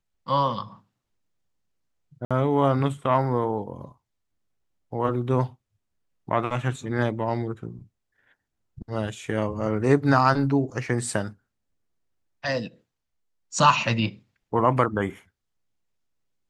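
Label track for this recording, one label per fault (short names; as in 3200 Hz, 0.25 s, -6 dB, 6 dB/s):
2.250000	2.310000	gap 56 ms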